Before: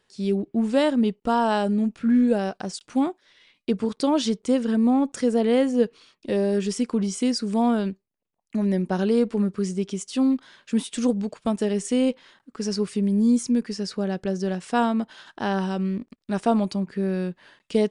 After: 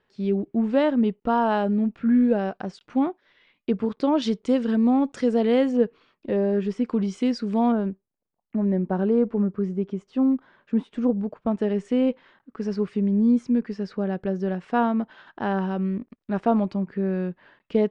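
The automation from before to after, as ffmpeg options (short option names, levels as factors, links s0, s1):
-af "asetnsamples=n=441:p=0,asendcmd='4.22 lowpass f 4100;5.77 lowpass f 1900;6.85 lowpass f 3100;7.72 lowpass f 1300;11.51 lowpass f 2100',lowpass=2400"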